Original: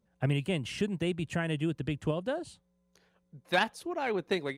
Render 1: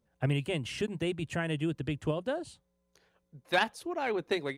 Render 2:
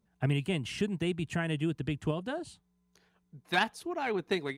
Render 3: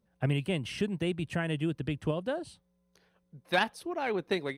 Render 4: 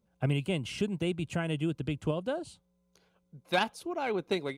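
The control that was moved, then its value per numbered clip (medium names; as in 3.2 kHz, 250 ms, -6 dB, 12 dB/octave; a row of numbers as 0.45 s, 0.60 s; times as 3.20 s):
band-stop, frequency: 190 Hz, 540 Hz, 7 kHz, 1.8 kHz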